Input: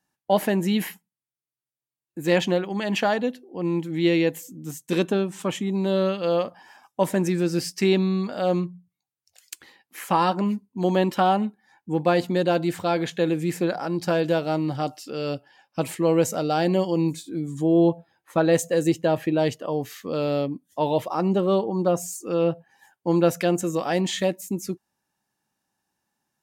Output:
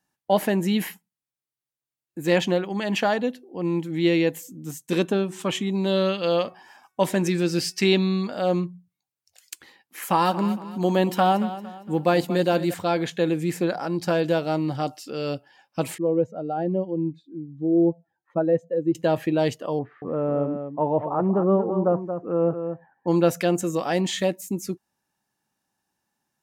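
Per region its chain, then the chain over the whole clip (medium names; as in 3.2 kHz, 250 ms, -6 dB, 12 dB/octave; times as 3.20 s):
5.22–8.30 s: de-hum 371.8 Hz, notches 7 + dynamic bell 3.5 kHz, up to +6 dB, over -44 dBFS, Q 0.82
10.02–12.74 s: treble shelf 11 kHz +11.5 dB + feedback delay 229 ms, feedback 39%, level -14 dB
15.98–18.95 s: spectral contrast enhancement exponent 1.6 + distance through air 320 m + upward expansion, over -36 dBFS
19.79–23.08 s: low-pass 1.5 kHz 24 dB/octave + delay 228 ms -8 dB
whole clip: none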